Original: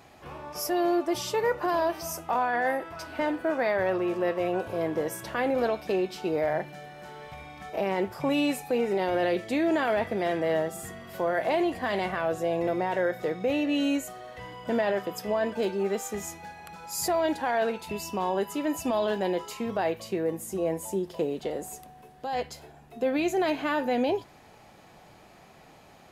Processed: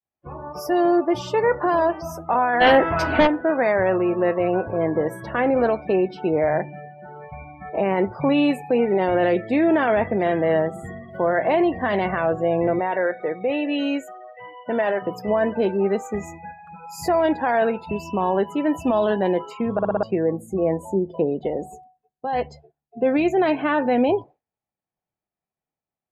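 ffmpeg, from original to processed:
ffmpeg -i in.wav -filter_complex "[0:a]asplit=3[link_01][link_02][link_03];[link_01]afade=type=out:start_time=2.6:duration=0.02[link_04];[link_02]aeval=exprs='0.178*sin(PI/2*2.51*val(0)/0.178)':channel_layout=same,afade=type=in:start_time=2.6:duration=0.02,afade=type=out:start_time=3.26:duration=0.02[link_05];[link_03]afade=type=in:start_time=3.26:duration=0.02[link_06];[link_04][link_05][link_06]amix=inputs=3:normalize=0,asettb=1/sr,asplit=3[link_07][link_08][link_09];[link_07]atrim=end=12.794[link_10];[link_08]atrim=start=12.79:end=15.02,asetpts=PTS-STARTPTS,afade=type=in:duration=0.004:curve=qsin,afade=type=out:start_time=2.226:duration=0.004:curve=qsin,highpass=frequency=450:poles=1[link_11];[link_09]atrim=start=15.016[link_12];[link_10][link_11]acrossfade=duration=0.004:curve1=hsin:curve2=qsin[link_13];[link_13][link_12]acrossfade=duration=0.004:curve1=qsin:curve2=hsin,asplit=6[link_14][link_15][link_16][link_17][link_18][link_19];[link_14]atrim=end=19.792[link_20];[link_15]atrim=start=19.728:end=19.792[link_21];[link_16]atrim=start=19.728:end=19.792[link_22];[link_17]atrim=start=19.728:end=19.792[link_23];[link_18]atrim=start=19.728:end=19.792[link_24];[link_19]atrim=start=20.028[link_25];[link_20][link_21]acrossfade=duration=0.004:curve1=hsin:curve2=hsin[link_26];[link_26][link_22]acrossfade=duration=0.004:curve1=hsin:curve2=hsin[link_27];[link_27][link_23]acrossfade=duration=0.004:curve1=hsin:curve2=hsin[link_28];[link_28][link_24]acrossfade=duration=0.004:curve1=hsin:curve2=hsin[link_29];[link_29][link_25]acrossfade=duration=0.004:curve1=hsin:curve2=hsin,agate=range=-33dB:threshold=-42dB:ratio=3:detection=peak,afftdn=noise_reduction=30:noise_floor=-41,bass=frequency=250:gain=3,treble=frequency=4000:gain=-13,volume=6.5dB" out.wav

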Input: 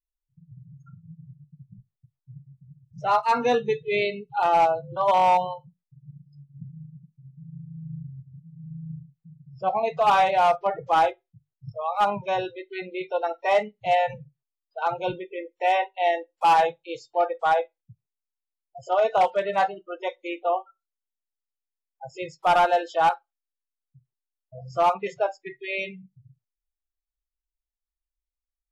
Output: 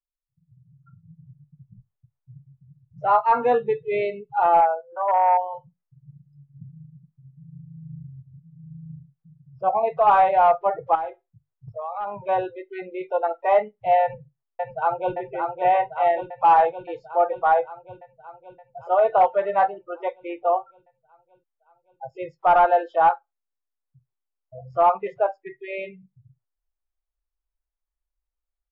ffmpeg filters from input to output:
ffmpeg -i in.wav -filter_complex "[0:a]asplit=3[link_01][link_02][link_03];[link_01]afade=type=out:start_time=4.6:duration=0.02[link_04];[link_02]highpass=frequency=480:width=0.5412,highpass=frequency=480:width=1.3066,equalizer=frequency=600:width_type=q:width=4:gain=-5,equalizer=frequency=1100:width_type=q:width=4:gain=-8,equalizer=frequency=1700:width_type=q:width=4:gain=10,lowpass=frequency=2100:width=0.5412,lowpass=frequency=2100:width=1.3066,afade=type=in:start_time=4.6:duration=0.02,afade=type=out:start_time=5.53:duration=0.02[link_05];[link_03]afade=type=in:start_time=5.53:duration=0.02[link_06];[link_04][link_05][link_06]amix=inputs=3:normalize=0,asettb=1/sr,asplit=3[link_07][link_08][link_09];[link_07]atrim=end=10.954[link_10];[link_08]atrim=start=10.95:end=12.29,asetpts=PTS-STARTPTS,afade=type=in:duration=0.004:curve=qsin,afade=type=out:start_time=1.336:duration=0.004:curve=qsin,acompressor=threshold=-31dB:ratio=4:attack=3.2:release=140:knee=1:detection=peak[link_11];[link_09]atrim=start=12.286[link_12];[link_10][link_11]acrossfade=duration=0.004:curve1=hsin:curve2=qsin[link_13];[link_13][link_12]acrossfade=duration=0.004:curve1=qsin:curve2=hsin,asplit=2[link_14][link_15];[link_15]afade=type=in:start_time=14.02:duration=0.01,afade=type=out:start_time=15.16:duration=0.01,aecho=0:1:570|1140|1710|2280|2850|3420|3990|4560|5130|5700|6270|6840:0.595662|0.416964|0.291874|0.204312|0.143018|0.100113|0.0700791|0.0490553|0.0343387|0.0240371|0.016826|0.0117782[link_16];[link_14][link_16]amix=inputs=2:normalize=0,lowpass=1300,equalizer=frequency=190:width_type=o:width=1.8:gain=-9.5,dynaudnorm=framelen=350:gausssize=5:maxgain=11.5dB,volume=-5.5dB" out.wav

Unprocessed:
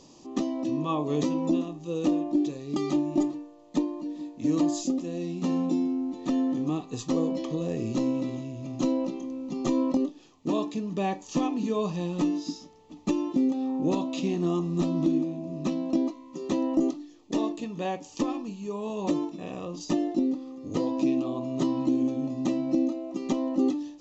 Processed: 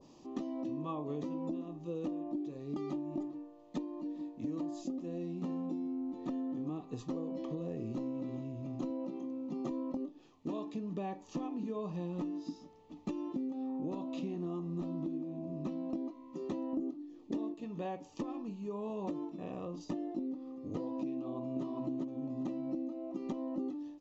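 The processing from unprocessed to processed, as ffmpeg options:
ffmpeg -i in.wav -filter_complex "[0:a]asettb=1/sr,asplit=3[link_01][link_02][link_03];[link_01]atrim=end=8.904[link_04];[link_02]atrim=start=8.9:end=9.71,asetpts=PTS-STARTPTS,afade=type=in:duration=0.004:curve=qsin,afade=type=out:start_time=0.806:duration=0.004:curve=qsin,highpass=95[link_05];[link_03]atrim=start=9.706[link_06];[link_04][link_05]acrossfade=duration=0.004:curve1=hsin:curve2=qsin[link_07];[link_07][link_06]acrossfade=duration=0.004:curve1=qsin:curve2=hsin,asettb=1/sr,asplit=3[link_08][link_09][link_10];[link_08]atrim=end=16.734[link_11];[link_09]atrim=start=16.73:end=17.54,asetpts=PTS-STARTPTS,afade=type=in:duration=0.004:curve=qsin,afade=type=out:start_time=0.806:duration=0.004:curve=qsin,equalizer=frequency=270:width=0.82:gain=8.5[link_12];[link_10]atrim=start=17.536[link_13];[link_11][link_12]acrossfade=duration=0.004:curve1=hsin:curve2=qsin[link_14];[link_14][link_13]acrossfade=duration=0.004:curve1=qsin:curve2=hsin,asplit=2[link_15][link_16];[link_16]afade=type=in:start_time=21.16:duration=0.01,afade=type=out:start_time=21.64:duration=0.01,aecho=0:1:400|800:0.944061|0.0944061[link_17];[link_15][link_17]amix=inputs=2:normalize=0,aemphasis=mode=reproduction:type=50fm,acompressor=threshold=-30dB:ratio=6,adynamicequalizer=threshold=0.00178:dfrequency=1600:dqfactor=0.7:tfrequency=1600:tqfactor=0.7:attack=5:release=100:ratio=0.375:range=2.5:mode=cutabove:tftype=highshelf,volume=-5dB" out.wav

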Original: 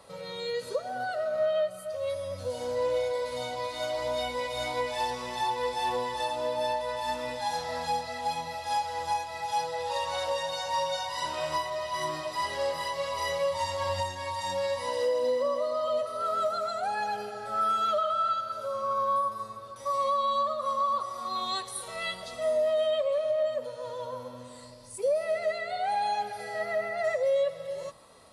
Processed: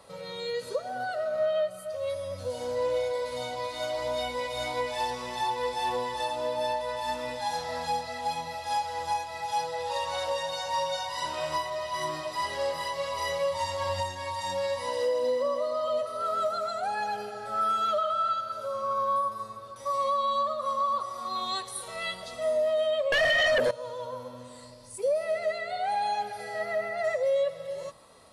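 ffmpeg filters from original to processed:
ffmpeg -i in.wav -filter_complex "[0:a]asettb=1/sr,asplit=3[link_01][link_02][link_03];[link_01]atrim=end=23.124[link_04];[link_02]atrim=start=23.12:end=23.71,asetpts=PTS-STARTPTS,afade=type=in:duration=0.004:curve=qsin,afade=type=out:start_time=0.586:duration=0.004:curve=qsin,aeval=exprs='0.1*sin(PI/2*3.98*val(0)/0.1)':channel_layout=same[link_05];[link_03]atrim=start=23.706[link_06];[link_04][link_05]acrossfade=duration=0.004:curve1=hsin:curve2=qsin[link_07];[link_07][link_06]acrossfade=duration=0.004:curve1=qsin:curve2=hsin" out.wav

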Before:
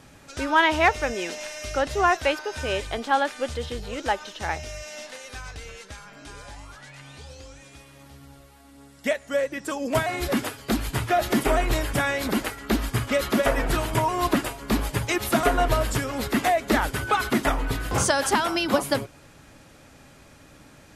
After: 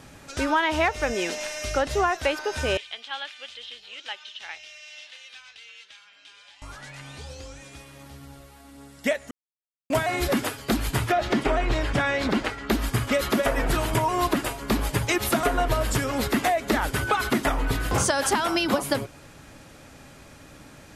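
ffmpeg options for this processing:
ffmpeg -i in.wav -filter_complex "[0:a]asettb=1/sr,asplit=3[link_01][link_02][link_03];[link_01]atrim=end=2.774[link_04];[link_02]atrim=start=2.77:end=6.62,asetpts=PTS-STARTPTS,afade=type=in:duration=0.004:curve=qsin,afade=type=out:start_time=3.846:duration=0.004:curve=qsin,bandpass=frequency=3100:width_type=q:width=2.6[link_05];[link_03]atrim=start=6.616[link_06];[link_04][link_05]acrossfade=duration=0.004:curve1=hsin:curve2=qsin[link_07];[link_07][link_06]acrossfade=duration=0.004:curve1=qsin:curve2=hsin,asettb=1/sr,asplit=3[link_08][link_09][link_10];[link_08]atrim=end=11.124[link_11];[link_09]atrim=start=11.12:end=12.7,asetpts=PTS-STARTPTS,afade=type=in:duration=0.004:curve=qsin,afade=type=out:start_time=1.576:duration=0.004:curve=qsin,lowpass=5000[link_12];[link_10]atrim=start=12.696[link_13];[link_11][link_12]acrossfade=duration=0.004:curve1=hsin:curve2=qsin[link_14];[link_14][link_13]acrossfade=duration=0.004:curve1=qsin:curve2=hsin,asplit=3[link_15][link_16][link_17];[link_15]atrim=end=9.31,asetpts=PTS-STARTPTS,afade=type=out:start_time=9.306:duration=0.004:curve=hsin[link_18];[link_16]atrim=start=9.31:end=9.9,asetpts=PTS-STARTPTS,volume=0[link_19];[link_17]atrim=start=9.9,asetpts=PTS-STARTPTS,afade=type=in:duration=0.004:curve=hsin[link_20];[link_18][link_19][link_20]concat=n=3:v=0:a=1,acompressor=threshold=-22dB:ratio=6,volume=3dB" out.wav

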